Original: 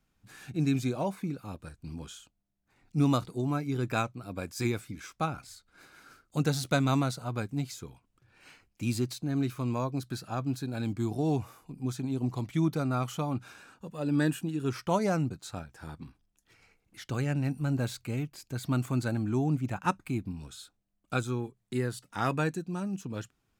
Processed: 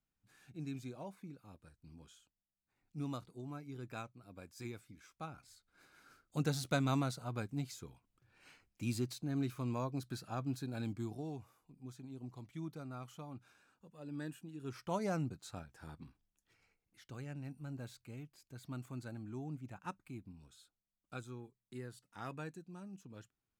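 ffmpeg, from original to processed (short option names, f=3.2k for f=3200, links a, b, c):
-af "volume=2dB,afade=t=in:st=5.18:d=1.25:silence=0.354813,afade=t=out:st=10.8:d=0.52:silence=0.316228,afade=t=in:st=14.49:d=0.66:silence=0.354813,afade=t=out:st=16.01:d=1.03:silence=0.398107"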